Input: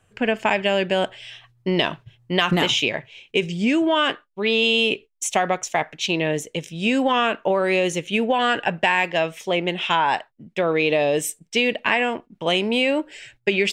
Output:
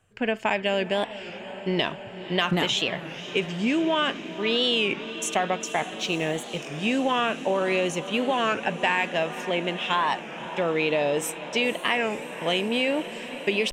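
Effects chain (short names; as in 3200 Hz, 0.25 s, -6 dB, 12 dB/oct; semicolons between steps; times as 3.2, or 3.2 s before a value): 5.87–6.78 G.711 law mismatch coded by A; diffused feedback echo 0.517 s, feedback 78%, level -14 dB; record warp 33 1/3 rpm, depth 160 cents; gain -4.5 dB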